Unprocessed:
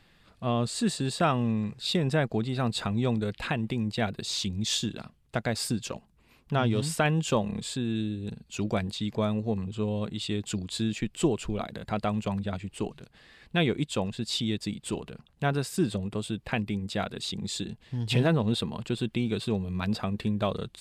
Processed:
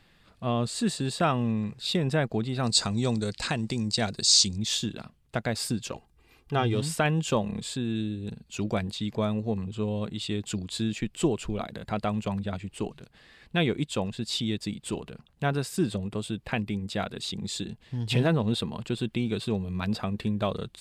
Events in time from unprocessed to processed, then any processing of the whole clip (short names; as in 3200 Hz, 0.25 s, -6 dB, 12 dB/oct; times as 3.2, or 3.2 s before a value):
2.63–4.58 band shelf 6100 Hz +15 dB 1.3 oct
5.94–6.75 comb 2.5 ms, depth 60%